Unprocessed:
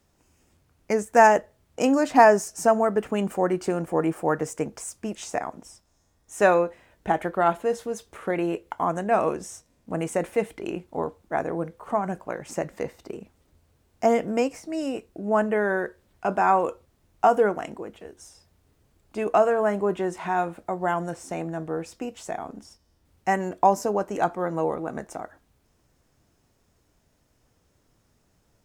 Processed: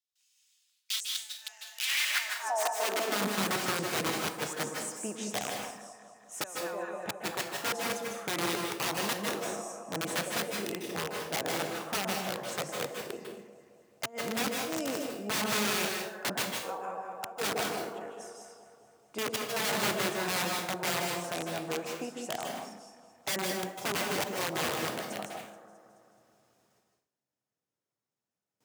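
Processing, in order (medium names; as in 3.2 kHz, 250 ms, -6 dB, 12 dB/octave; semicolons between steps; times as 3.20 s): peaking EQ 85 Hz -8 dB 2.9 oct; echo whose repeats swap between lows and highs 107 ms, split 920 Hz, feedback 77%, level -13 dB; inverted gate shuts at -11 dBFS, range -27 dB; integer overflow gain 22.5 dB; bass shelf 150 Hz -10 dB; gate with hold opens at -58 dBFS; high-pass sweep 3.6 kHz -> 120 Hz, 1.72–3.54 s; on a send at -2 dB: reverberation RT60 0.50 s, pre-delay 144 ms; on the sum: trim -3.5 dB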